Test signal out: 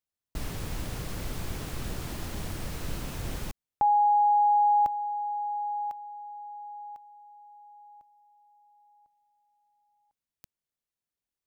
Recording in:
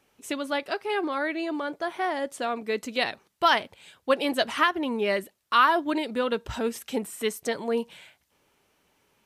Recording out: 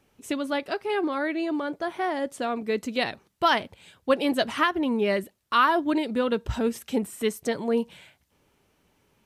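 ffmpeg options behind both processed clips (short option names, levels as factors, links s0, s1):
-af "lowshelf=f=300:g=10,volume=0.841"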